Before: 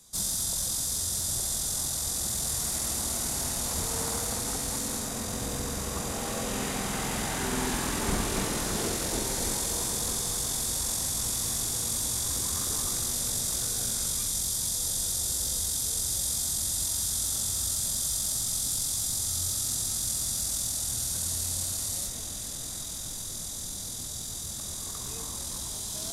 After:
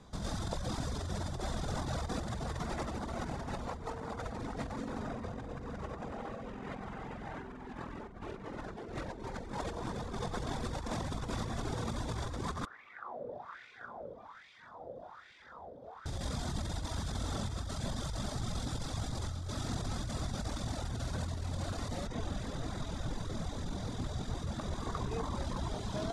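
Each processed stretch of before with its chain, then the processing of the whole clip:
0:12.65–0:16.06: LFO wah 1.2 Hz 530–2,300 Hz, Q 3.6 + low-pass filter 3,000 Hz 6 dB per octave
whole clip: low-pass filter 1,600 Hz 12 dB per octave; reverb reduction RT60 1.1 s; compressor whose output falls as the input rises −45 dBFS, ratio −1; level +6.5 dB

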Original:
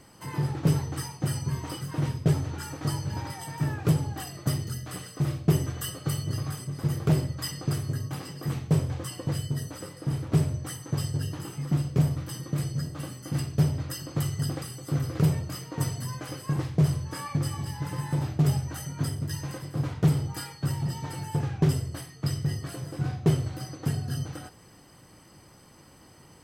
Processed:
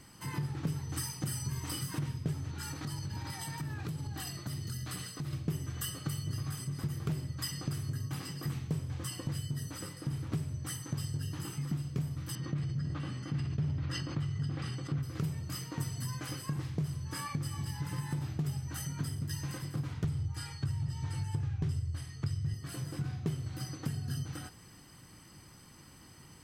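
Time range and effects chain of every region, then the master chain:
0:00.89–0:01.99: high-shelf EQ 5,200 Hz +7.5 dB + double-tracking delay 46 ms −8 dB
0:02.51–0:05.33: parametric band 4,100 Hz +5.5 dB 0.25 octaves + downward compressor, threshold −33 dBFS
0:12.35–0:15.03: dynamic equaliser 130 Hz, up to +3 dB, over −32 dBFS, Q 1.1 + low-pass filter 3,500 Hz + level that may fall only so fast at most 37 dB per second
0:20.04–0:22.54: low-pass filter 9,700 Hz + low shelf with overshoot 130 Hz +10 dB, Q 1.5
whole clip: parametric band 570 Hz −9 dB 1.4 octaves; downward compressor 4 to 1, threshold −33 dBFS

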